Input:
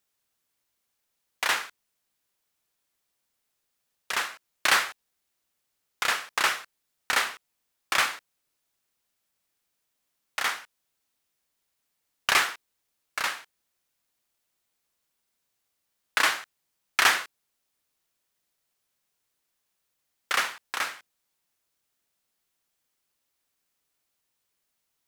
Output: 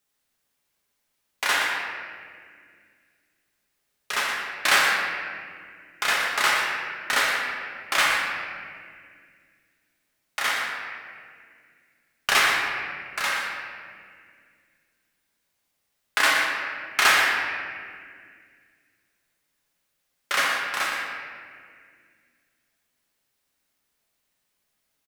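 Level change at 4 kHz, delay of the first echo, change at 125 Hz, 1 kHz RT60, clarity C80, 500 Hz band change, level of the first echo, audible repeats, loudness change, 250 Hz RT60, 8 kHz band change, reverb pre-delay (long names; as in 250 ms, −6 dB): +3.5 dB, 119 ms, can't be measured, 1.8 s, 1.0 dB, +6.0 dB, −7.5 dB, 1, +3.0 dB, 2.9 s, +2.5 dB, 5 ms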